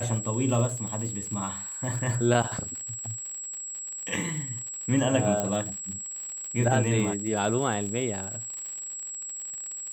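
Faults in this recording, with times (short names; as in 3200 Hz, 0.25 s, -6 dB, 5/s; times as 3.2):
crackle 87/s -34 dBFS
tone 7700 Hz -34 dBFS
5.4 pop -13 dBFS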